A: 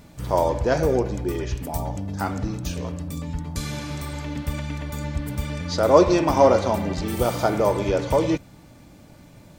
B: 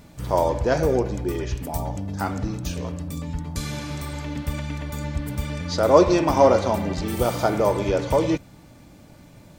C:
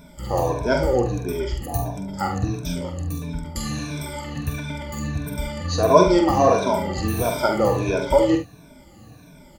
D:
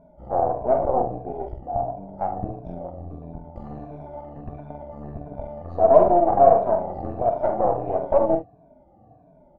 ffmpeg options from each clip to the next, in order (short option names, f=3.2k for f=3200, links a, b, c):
-af anull
-filter_complex "[0:a]afftfilt=real='re*pow(10,19/40*sin(2*PI*(1.6*log(max(b,1)*sr/1024/100)/log(2)-(-1.5)*(pts-256)/sr)))':imag='im*pow(10,19/40*sin(2*PI*(1.6*log(max(b,1)*sr/1024/100)/log(2)-(-1.5)*(pts-256)/sr)))':win_size=1024:overlap=0.75,asplit=2[a][b];[b]aecho=0:1:46|73:0.447|0.251[c];[a][c]amix=inputs=2:normalize=0,volume=-3dB"
-af "aeval=exprs='0.891*(cos(1*acos(clip(val(0)/0.891,-1,1)))-cos(1*PI/2))+0.178*(cos(8*acos(clip(val(0)/0.891,-1,1)))-cos(8*PI/2))':c=same,lowpass=f=710:t=q:w=7.1,volume=-10.5dB"